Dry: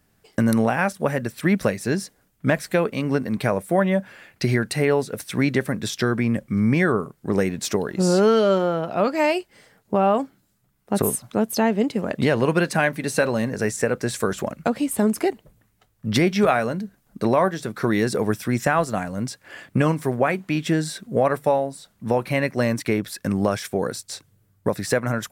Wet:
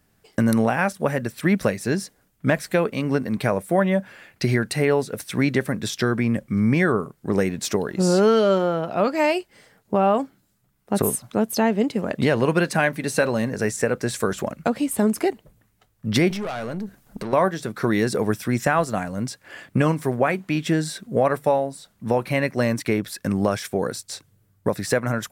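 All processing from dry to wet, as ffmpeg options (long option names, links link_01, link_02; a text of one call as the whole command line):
ffmpeg -i in.wav -filter_complex "[0:a]asettb=1/sr,asplit=3[link_01][link_02][link_03];[link_01]atrim=end=16.304[link_04];[link_02]atrim=start=16.3:end=17.33,asetpts=PTS-STARTPTS,afade=type=in:duration=0.004:curve=qsin,afade=type=out:start_time=1.026:duration=0.004:curve=qsin,aeval=exprs='0.473*sin(PI/2*1.78*val(0)/0.473)':channel_layout=same,acompressor=threshold=-23dB:ratio=10:attack=3.2:release=140:knee=1:detection=peak,aeval=exprs='(tanh(15.8*val(0)+0.45)-tanh(0.45))/15.8':channel_layout=same[link_05];[link_03]atrim=start=17.326[link_06];[link_04][link_05]acrossfade=duration=0.004:curve1=hsin:curve2=qsin[link_07];[link_07][link_06]acrossfade=duration=0.004:curve1=qsin:curve2=hsin" out.wav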